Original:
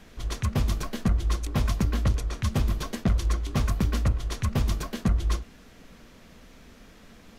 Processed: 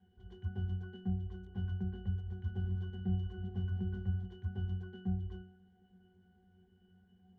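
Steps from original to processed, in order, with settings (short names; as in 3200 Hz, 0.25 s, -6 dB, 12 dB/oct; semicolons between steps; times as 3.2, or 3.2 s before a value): 1.98–4.26 regenerating reverse delay 0.212 s, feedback 60%, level -9.5 dB; octave resonator F#, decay 0.46 s; gain +1 dB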